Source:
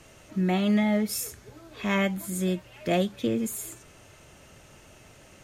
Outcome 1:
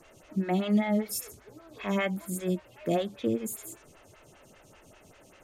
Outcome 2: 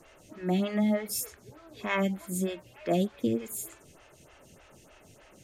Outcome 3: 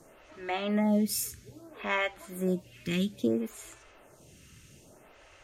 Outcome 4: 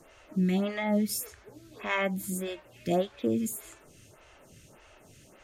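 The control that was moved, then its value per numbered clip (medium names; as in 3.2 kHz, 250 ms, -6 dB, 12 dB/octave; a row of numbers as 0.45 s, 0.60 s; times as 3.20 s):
lamp-driven phase shifter, rate: 5.1 Hz, 3.3 Hz, 0.61 Hz, 1.7 Hz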